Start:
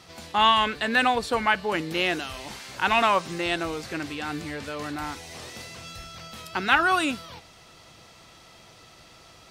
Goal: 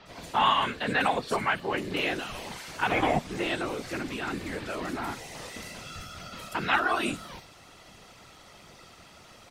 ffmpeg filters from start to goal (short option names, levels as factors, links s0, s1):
-filter_complex "[0:a]asplit=2[s0][s1];[s1]acompressor=threshold=0.0316:ratio=6,volume=1[s2];[s0][s2]amix=inputs=2:normalize=0,asettb=1/sr,asplit=3[s3][s4][s5];[s3]atrim=end=2.914[s6];[s4]atrim=start=2.91:end=3.31,asetpts=PTS-STARTPTS,afade=t=in:d=0.004:c=qsin,afade=t=out:st=0.396:d=0.004:c=qsin,afreqshift=-360[s7];[s5]atrim=start=3.306[s8];[s6][s7]acrossfade=d=0.004:c1=hsin:c2=qsin[s9];[s9][s8]acrossfade=d=0.004:c1=qsin:c2=hsin,afftfilt=real='hypot(re,im)*cos(2*PI*random(0))':imag='hypot(re,im)*sin(2*PI*random(1))':win_size=512:overlap=0.75,acrossover=split=4500[s10][s11];[s11]adelay=60[s12];[s10][s12]amix=inputs=2:normalize=0"